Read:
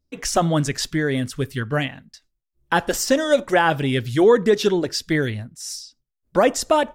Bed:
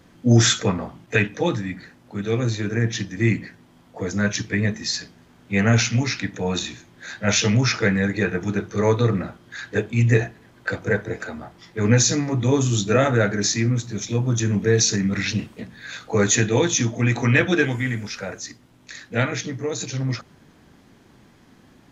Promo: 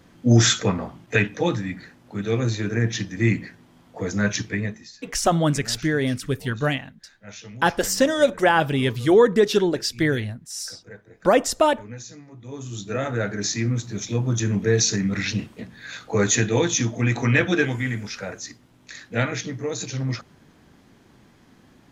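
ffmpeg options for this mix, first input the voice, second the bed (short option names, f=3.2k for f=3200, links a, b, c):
-filter_complex "[0:a]adelay=4900,volume=-0.5dB[a];[1:a]volume=19.5dB,afade=t=out:st=4.39:d=0.52:silence=0.0891251,afade=t=in:st=12.43:d=1.46:silence=0.1[b];[a][b]amix=inputs=2:normalize=0"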